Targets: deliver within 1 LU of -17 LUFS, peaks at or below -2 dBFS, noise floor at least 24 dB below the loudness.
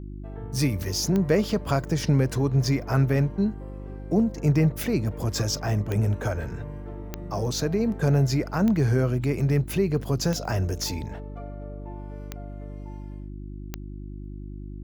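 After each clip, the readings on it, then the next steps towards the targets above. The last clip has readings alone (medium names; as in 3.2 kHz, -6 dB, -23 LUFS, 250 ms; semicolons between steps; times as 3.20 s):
clicks found 7; hum 50 Hz; highest harmonic 350 Hz; hum level -35 dBFS; loudness -25.0 LUFS; peak level -8.0 dBFS; loudness target -17.0 LUFS
-> de-click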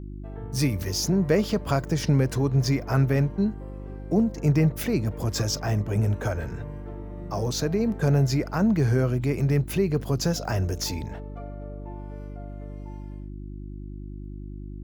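clicks found 0; hum 50 Hz; highest harmonic 350 Hz; hum level -35 dBFS
-> de-hum 50 Hz, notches 7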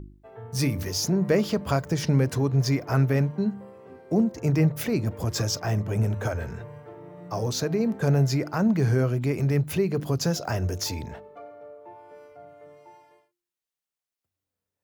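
hum not found; loudness -25.5 LUFS; peak level -8.5 dBFS; loudness target -17.0 LUFS
-> trim +8.5 dB; peak limiter -2 dBFS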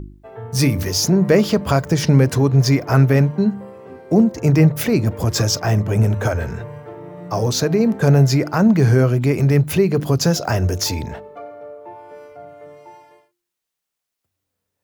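loudness -17.0 LUFS; peak level -2.0 dBFS; noise floor -81 dBFS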